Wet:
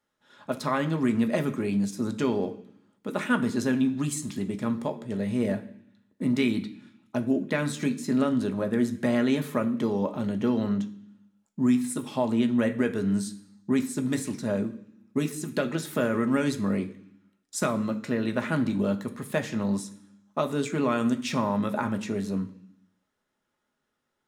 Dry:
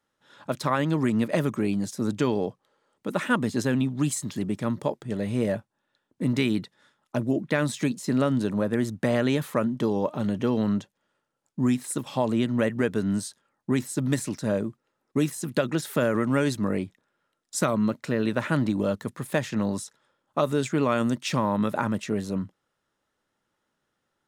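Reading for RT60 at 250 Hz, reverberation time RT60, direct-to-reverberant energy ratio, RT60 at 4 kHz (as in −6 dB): 0.95 s, 0.65 s, 5.0 dB, 0.95 s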